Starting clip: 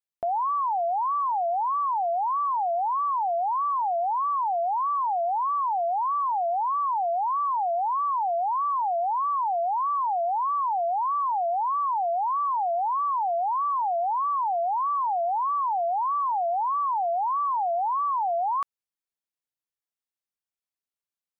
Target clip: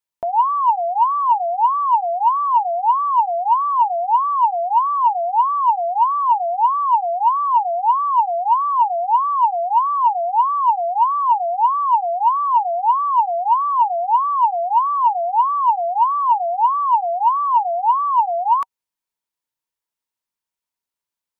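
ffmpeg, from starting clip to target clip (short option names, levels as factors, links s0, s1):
-af "equalizer=f=940:w=7.8:g=10.5,bandreject=f=770:w=15,acontrast=23"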